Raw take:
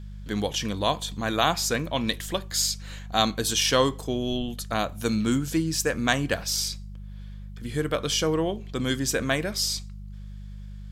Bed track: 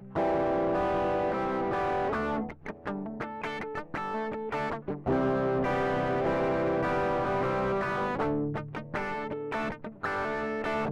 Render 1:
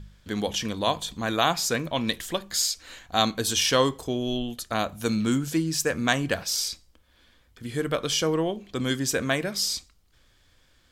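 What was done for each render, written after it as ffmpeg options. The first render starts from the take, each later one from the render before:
-af "bandreject=f=50:t=h:w=4,bandreject=f=100:t=h:w=4,bandreject=f=150:t=h:w=4,bandreject=f=200:t=h:w=4"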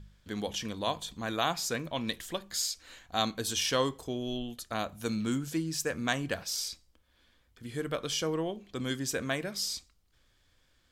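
-af "volume=-7dB"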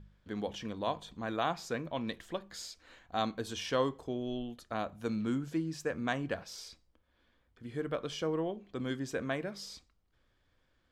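-af "lowpass=f=1.3k:p=1,lowshelf=f=160:g=-5"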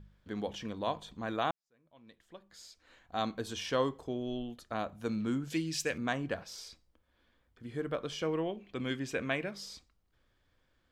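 -filter_complex "[0:a]asettb=1/sr,asplit=3[a][b][c];[a]atrim=end=5.504[d];[b]atrim=start=5.5:end=5.98,asetpts=PTS-STARTPTS,afade=t=in:d=0.004:c=qsin,afade=t=out:st=0.476:d=0.004:c=qsin,highshelf=f=1.8k:t=q:w=1.5:g=10.5[e];[c]atrim=start=5.976[f];[d][e]acrossfade=d=0.004:c1=hsin:c2=qsin[g];[g][f]acrossfade=d=0.004:c1=qsin:c2=hsin,asettb=1/sr,asplit=3[h][i][j];[h]atrim=end=8.214[k];[i]atrim=start=8.21:end=9.51,asetpts=PTS-STARTPTS,afade=t=in:d=0.004:c=qsin,afade=t=out:st=1.296:d=0.004:c=qsin,equalizer=f=2.5k:w=2:g=10[l];[j]atrim=start=9.506[m];[k][l]acrossfade=d=0.004:c1=hsin:c2=qsin[n];[n][m]acrossfade=d=0.004:c1=qsin:c2=hsin,asplit=2[o][p];[o]atrim=end=1.51,asetpts=PTS-STARTPTS,afade=t=out:st=1.506:d=0.004:c=hsin[q];[p]atrim=start=1.51,asetpts=PTS-STARTPTS,afade=t=in:d=1.81:c=qua[r];[q][r]concat=n=2:v=0:a=1"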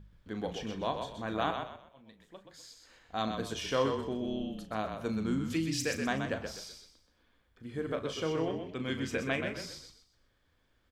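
-filter_complex "[0:a]asplit=2[a][b];[b]adelay=37,volume=-10.5dB[c];[a][c]amix=inputs=2:normalize=0,asplit=2[d][e];[e]asplit=4[f][g][h][i];[f]adelay=126,afreqshift=-32,volume=-6dB[j];[g]adelay=252,afreqshift=-64,volume=-15.9dB[k];[h]adelay=378,afreqshift=-96,volume=-25.8dB[l];[i]adelay=504,afreqshift=-128,volume=-35.7dB[m];[j][k][l][m]amix=inputs=4:normalize=0[n];[d][n]amix=inputs=2:normalize=0"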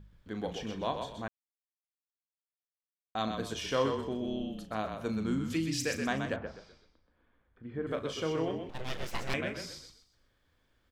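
-filter_complex "[0:a]asettb=1/sr,asplit=3[a][b][c];[a]atrim=end=6.364[d];[b]atrim=start=6.36:end=7.87,asetpts=PTS-STARTPTS,afade=t=in:d=0.004:c=qsin,afade=t=out:st=1.506:d=0.004:c=qsin,lowpass=1.9k[e];[c]atrim=start=7.866[f];[d][e]acrossfade=d=0.004:c1=hsin:c2=qsin[g];[g][f]acrossfade=d=0.004:c1=qsin:c2=hsin,asettb=1/sr,asplit=3[h][i][j];[h]atrim=end=8.694[k];[i]atrim=start=8.69:end=9.34,asetpts=PTS-STARTPTS,afade=t=in:d=0.004:c=qsin,afade=t=out:st=0.646:d=0.004:c=qsin,aeval=exprs='abs(val(0))':c=same[l];[j]atrim=start=9.336[m];[k][l]acrossfade=d=0.004:c1=hsin:c2=qsin[n];[n][m]acrossfade=d=0.004:c1=qsin:c2=hsin,asplit=3[o][p][q];[o]atrim=end=1.28,asetpts=PTS-STARTPTS,afade=t=out:st=1.276:d=0.004:c=hsin[r];[p]atrim=start=1.28:end=3.15,asetpts=PTS-STARTPTS,volume=0[s];[q]atrim=start=3.15,asetpts=PTS-STARTPTS,afade=t=in:d=0.004:c=hsin[t];[r][s][t]concat=n=3:v=0:a=1"

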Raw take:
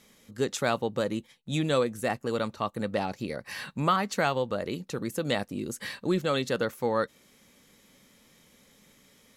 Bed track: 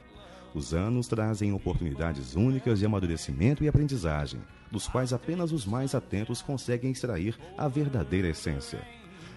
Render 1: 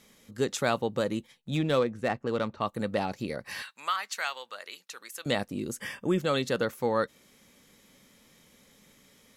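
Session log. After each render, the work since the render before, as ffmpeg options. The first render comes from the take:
-filter_complex "[0:a]asettb=1/sr,asplit=3[a][b][c];[a]atrim=end=1.504[d];[b]atrim=start=1.5:end=2.61,asetpts=PTS-STARTPTS,afade=t=in:d=0.004:c=qsin,afade=t=out:st=1.106:d=0.004:c=qsin,adynamicsmooth=sensitivity=3.5:basefreq=3k[e];[c]atrim=start=2.606[f];[d][e]acrossfade=d=0.004:c1=hsin:c2=qsin[g];[g][f]acrossfade=d=0.004:c1=qsin:c2=hsin,asettb=1/sr,asplit=3[h][i][j];[h]atrim=end=3.624[k];[i]atrim=start=3.62:end=5.26,asetpts=PTS-STARTPTS,afade=t=in:d=0.004:c=qsin,afade=t=out:st=1.636:d=0.004:c=qsin,highpass=1.4k[l];[j]atrim=start=5.256[m];[k][l]acrossfade=d=0.004:c1=hsin:c2=qsin[n];[n][m]acrossfade=d=0.004:c1=qsin:c2=hsin,asettb=1/sr,asplit=3[o][p][q];[o]atrim=end=5.804[r];[p]atrim=start=5.8:end=6.2,asetpts=PTS-STARTPTS,afade=t=in:d=0.004:c=qsin,afade=t=out:st=0.396:d=0.004:c=qsin,asuperstop=centerf=4100:order=12:qfactor=4[s];[q]atrim=start=6.196[t];[r][s]acrossfade=d=0.004:c1=hsin:c2=qsin[u];[u][t]acrossfade=d=0.004:c1=qsin:c2=hsin"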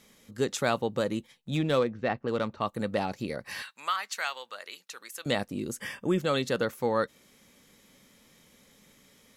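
-filter_complex "[0:a]asettb=1/sr,asplit=3[a][b][c];[a]atrim=end=1.884[d];[b]atrim=start=1.88:end=2.28,asetpts=PTS-STARTPTS,afade=t=in:d=0.004:c=qsin,afade=t=out:st=0.396:d=0.004:c=qsin,lowpass=f=4.7k:w=0.5412,lowpass=f=4.7k:w=1.3066[e];[c]atrim=start=2.276[f];[d][e]acrossfade=d=0.004:c1=hsin:c2=qsin[g];[g][f]acrossfade=d=0.004:c1=qsin:c2=hsin"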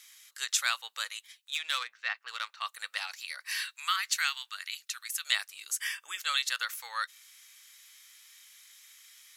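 -af "highpass=f=1.3k:w=0.5412,highpass=f=1.3k:w=1.3066,highshelf=f=2.2k:g=8.5"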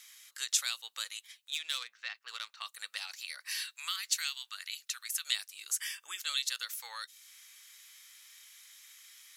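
-filter_complex "[0:a]acrossover=split=380|3000[a][b][c];[b]acompressor=threshold=-45dB:ratio=6[d];[a][d][c]amix=inputs=3:normalize=0"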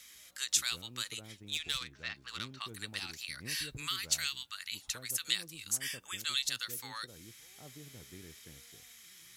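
-filter_complex "[1:a]volume=-24.5dB[a];[0:a][a]amix=inputs=2:normalize=0"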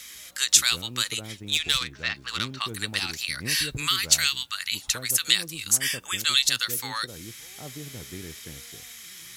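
-af "volume=12dB,alimiter=limit=-2dB:level=0:latency=1"

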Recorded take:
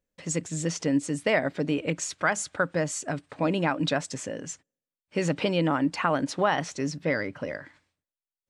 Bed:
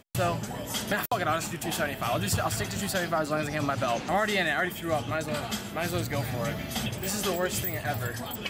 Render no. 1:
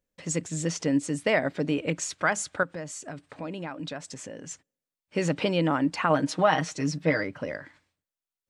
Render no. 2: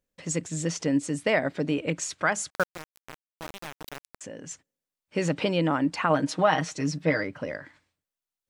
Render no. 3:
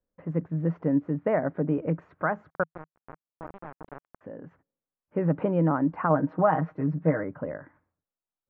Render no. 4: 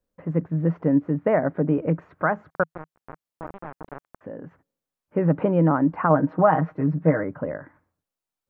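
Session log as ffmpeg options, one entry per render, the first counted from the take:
-filter_complex "[0:a]asettb=1/sr,asplit=3[a][b][c];[a]atrim=end=2.634[d];[b]atrim=start=2.63:end=4.51,asetpts=PTS-STARTPTS,afade=t=in:d=0.004:c=qsin,afade=t=out:st=1.876:d=0.004:c=qsin,acompressor=threshold=-40dB:ratio=2:attack=3.2:release=140:knee=1:detection=peak[e];[c]atrim=start=4.506[f];[d][e]acrossfade=d=0.004:c1=hsin:c2=qsin[g];[g][f]acrossfade=d=0.004:c1=qsin:c2=hsin,asettb=1/sr,asplit=3[h][i][j];[h]atrim=end=6.094[k];[i]atrim=start=6.09:end=7.24,asetpts=PTS-STARTPTS,afade=t=in:d=0.004:c=qsin,afade=t=out:st=1.146:d=0.004:c=qsin,aecho=1:1:6.4:0.65,atrim=end_sample=50715[l];[j]atrim=start=7.236[m];[k][l]acrossfade=d=0.004:c1=hsin:c2=qsin[n];[n][m]acrossfade=d=0.004:c1=qsin:c2=hsin"
-filter_complex "[0:a]asettb=1/sr,asplit=3[a][b][c];[a]atrim=end=2.504[d];[b]atrim=start=2.5:end=4.21,asetpts=PTS-STARTPTS,afade=t=in:d=0.004:c=qsin,afade=t=out:st=1.706:d=0.004:c=qsin,aeval=exprs='val(0)*gte(abs(val(0)),0.0335)':c=same[e];[c]atrim=start=4.206[f];[d][e]acrossfade=d=0.004:c1=hsin:c2=qsin[g];[g][f]acrossfade=d=0.004:c1=qsin:c2=hsin"
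-af "lowpass=f=1.4k:w=0.5412,lowpass=f=1.4k:w=1.3066,adynamicequalizer=threshold=0.00891:dfrequency=160:dqfactor=4.8:tfrequency=160:tqfactor=4.8:attack=5:release=100:ratio=0.375:range=2.5:mode=boostabove:tftype=bell"
-af "volume=4.5dB"

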